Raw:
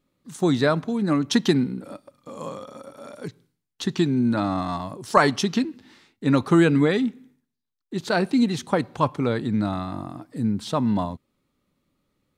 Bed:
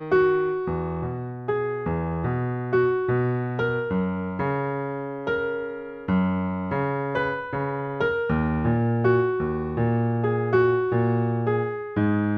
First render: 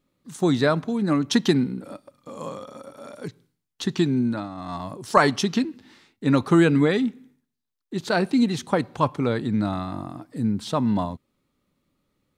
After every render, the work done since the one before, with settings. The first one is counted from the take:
0:04.16–0:04.89: duck −11.5 dB, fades 0.33 s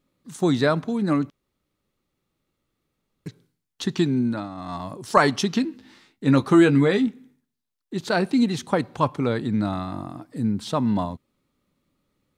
0:01.30–0:03.26: fill with room tone
0:05.62–0:07.07: double-tracking delay 15 ms −8 dB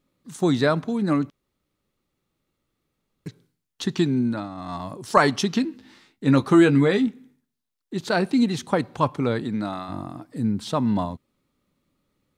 0:09.43–0:09.88: high-pass filter 170 Hz → 540 Hz 6 dB per octave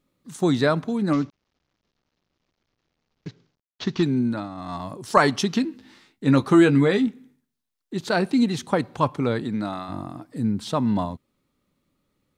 0:01.13–0:04.03: variable-slope delta modulation 32 kbit/s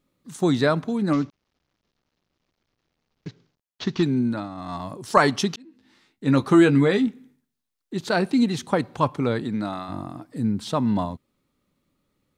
0:05.56–0:06.47: fade in linear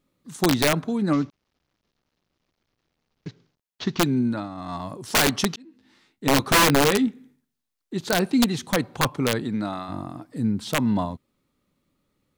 wrap-around overflow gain 12 dB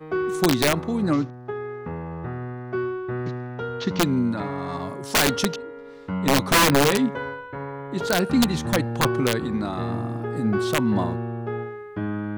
mix in bed −6 dB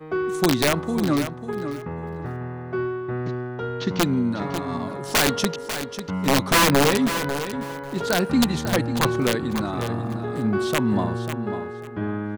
repeating echo 545 ms, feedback 19%, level −10 dB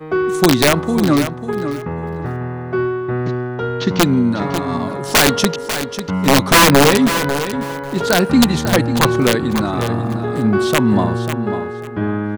level +7.5 dB
brickwall limiter −2 dBFS, peak gain reduction 1.5 dB

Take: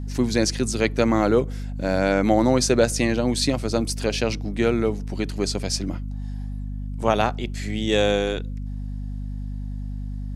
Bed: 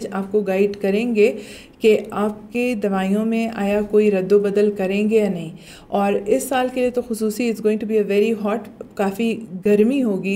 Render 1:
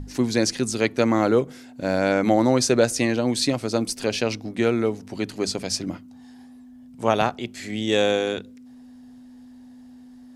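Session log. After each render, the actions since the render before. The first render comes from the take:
mains-hum notches 50/100/150/200 Hz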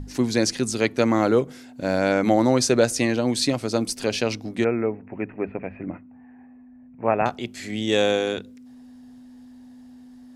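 0:04.64–0:07.26: Chebyshev low-pass with heavy ripple 2,600 Hz, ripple 3 dB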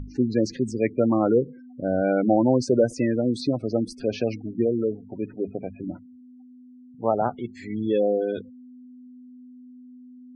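gate on every frequency bin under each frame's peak −15 dB strong
low-pass filter 1,400 Hz 6 dB per octave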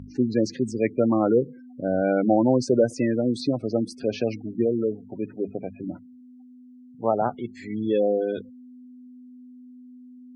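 high-pass filter 90 Hz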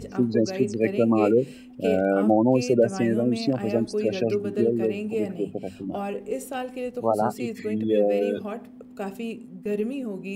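mix in bed −12 dB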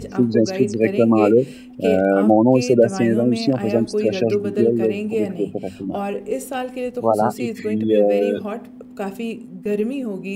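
level +5.5 dB

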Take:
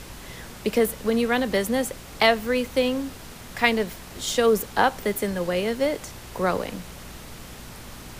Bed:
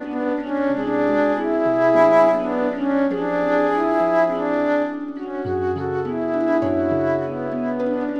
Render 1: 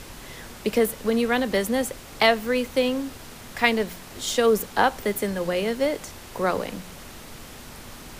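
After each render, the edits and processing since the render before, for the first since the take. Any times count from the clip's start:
hum removal 60 Hz, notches 3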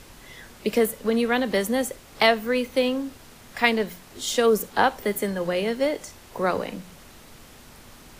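noise reduction from a noise print 6 dB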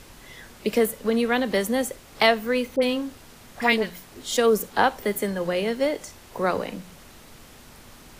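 0:02.76–0:04.37: all-pass dispersion highs, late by 57 ms, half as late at 1,300 Hz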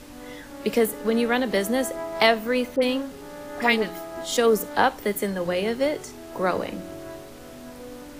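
mix in bed −18.5 dB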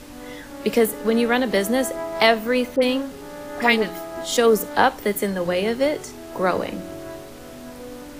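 level +3 dB
brickwall limiter −3 dBFS, peak gain reduction 1.5 dB

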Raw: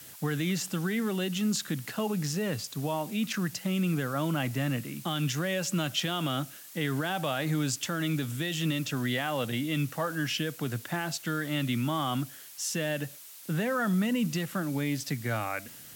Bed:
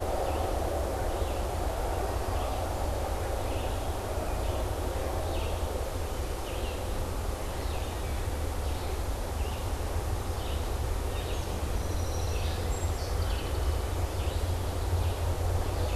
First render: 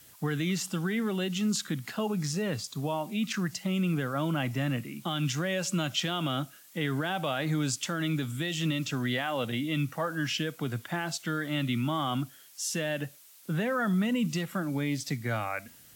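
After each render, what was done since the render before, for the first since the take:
noise reduction from a noise print 7 dB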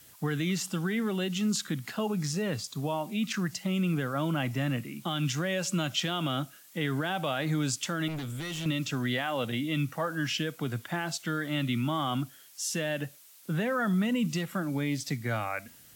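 0:08.08–0:08.66: hard clipping −33 dBFS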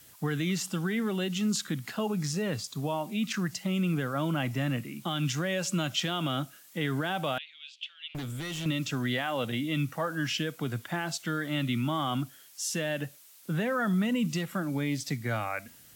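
0:07.38–0:08.15: flat-topped band-pass 3,000 Hz, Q 2.8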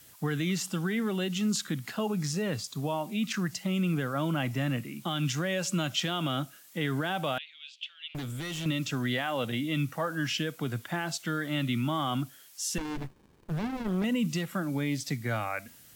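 0:12.78–0:14.04: windowed peak hold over 65 samples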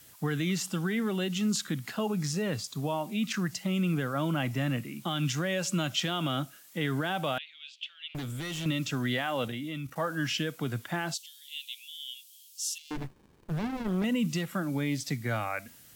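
0:09.48–0:09.96: output level in coarse steps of 12 dB
0:11.14–0:12.91: Butterworth high-pass 2,800 Hz 48 dB per octave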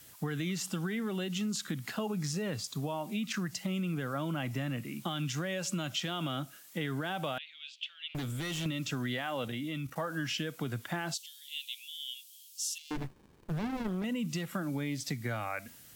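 downward compressor, threshold −31 dBFS, peak gain reduction 6.5 dB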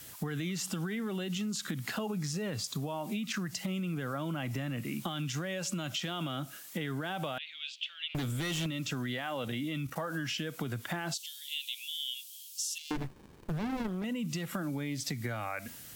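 in parallel at 0 dB: brickwall limiter −30.5 dBFS, peak gain reduction 8 dB
on the sum: downward compressor, threshold −32 dBFS, peak gain reduction 6.5 dB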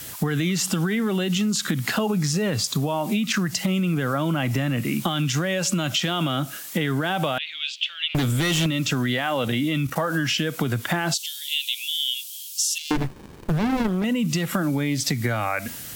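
level +12 dB

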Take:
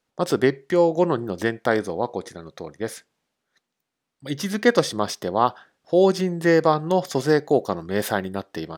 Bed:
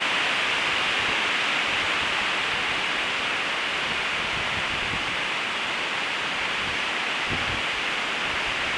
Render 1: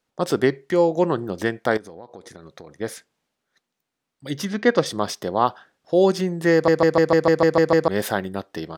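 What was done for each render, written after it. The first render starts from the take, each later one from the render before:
0:01.77–0:02.78: downward compressor, threshold −36 dBFS
0:04.45–0:04.86: high-frequency loss of the air 120 metres
0:06.53: stutter in place 0.15 s, 9 plays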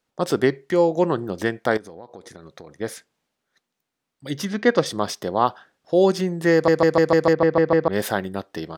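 0:07.33–0:07.93: high-frequency loss of the air 250 metres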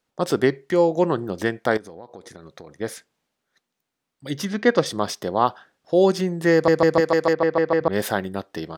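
0:07.00–0:07.81: low-shelf EQ 240 Hz −10 dB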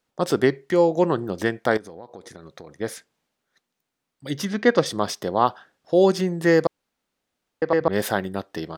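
0:06.67–0:07.62: fill with room tone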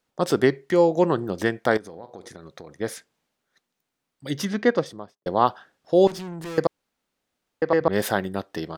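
0:01.89–0:02.30: flutter between parallel walls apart 7.4 metres, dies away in 0.22 s
0:04.46–0:05.26: fade out and dull
0:06.07–0:06.58: tube saturation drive 32 dB, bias 0.6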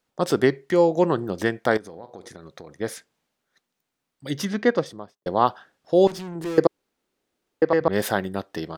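0:06.35–0:07.65: parametric band 370 Hz +8.5 dB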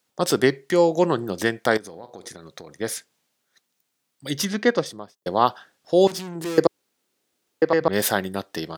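high-pass filter 85 Hz
high-shelf EQ 3,100 Hz +9.5 dB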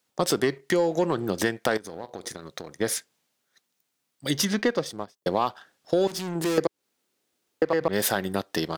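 leveller curve on the samples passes 1
downward compressor 4 to 1, threshold −21 dBFS, peak gain reduction 10.5 dB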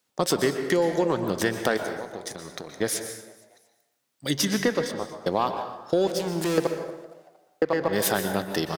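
echo with shifted repeats 231 ms, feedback 46%, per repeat +85 Hz, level −22.5 dB
dense smooth reverb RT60 1 s, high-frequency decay 0.6×, pre-delay 110 ms, DRR 6.5 dB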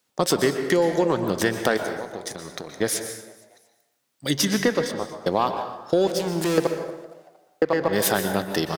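level +2.5 dB

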